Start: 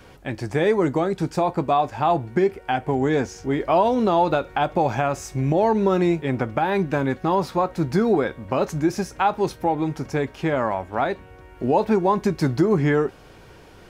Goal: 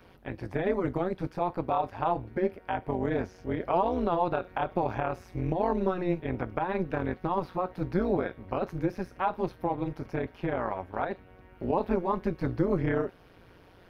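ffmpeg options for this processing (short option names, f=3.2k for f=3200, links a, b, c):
-filter_complex "[0:a]equalizer=f=7.4k:t=o:w=0.61:g=-15,acrossover=split=3100[a][b];[b]acompressor=threshold=-51dB:ratio=4:attack=1:release=60[c];[a][c]amix=inputs=2:normalize=0,tremolo=f=180:d=0.889,volume=-4.5dB"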